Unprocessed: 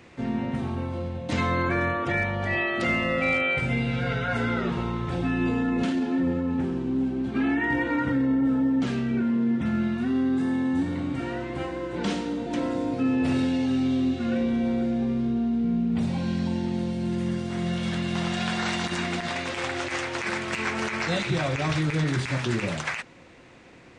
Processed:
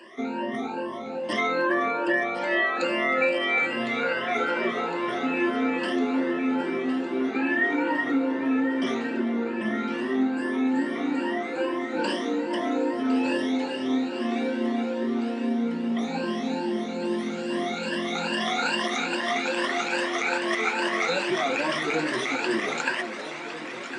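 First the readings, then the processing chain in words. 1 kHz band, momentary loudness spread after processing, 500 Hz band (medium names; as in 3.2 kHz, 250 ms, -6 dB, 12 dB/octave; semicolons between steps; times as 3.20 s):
+3.5 dB, 5 LU, +3.5 dB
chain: drifting ripple filter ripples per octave 1.3, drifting +2.4 Hz, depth 23 dB; high-pass 280 Hz 24 dB/octave; treble shelf 4.6 kHz -5 dB; compression 1.5:1, threshold -26 dBFS, peak gain reduction 4 dB; echo whose repeats swap between lows and highs 529 ms, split 1 kHz, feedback 87%, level -10.5 dB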